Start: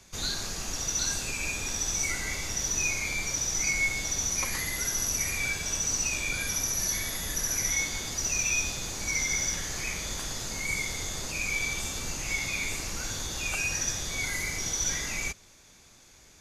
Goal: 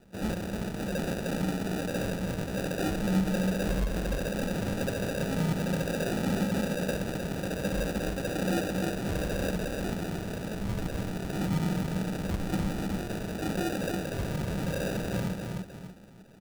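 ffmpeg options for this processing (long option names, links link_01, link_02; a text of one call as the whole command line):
ffmpeg -i in.wav -filter_complex "[0:a]asettb=1/sr,asplit=3[link_01][link_02][link_03];[link_01]atrim=end=1.584[link_04];[link_02]atrim=start=1.58:end=2.48,asetpts=PTS-STARTPTS,afade=type=in:duration=0.004:curve=qsin,afade=type=out:start_time=0.896:duration=0.004:curve=qsin,acrossover=split=150|3000[link_05][link_06][link_07];[link_06]acompressor=threshold=-37dB:ratio=6[link_08];[link_05][link_08][link_07]amix=inputs=3:normalize=0[link_09];[link_03]atrim=start=2.476[link_10];[link_04][link_09]acrossfade=duration=0.004:curve1=hsin:curve2=qsin[link_11];[link_11][link_10]acrossfade=duration=0.004:curve1=qsin:curve2=hsin,aecho=1:1:298|596|894|1192:0.631|0.221|0.0773|0.0271,volume=22.5dB,asoftclip=hard,volume=-22.5dB,highpass=110,lowpass=5600,acrusher=samples=41:mix=1:aa=0.000001,equalizer=frequency=190:width_type=o:width=0.3:gain=11" out.wav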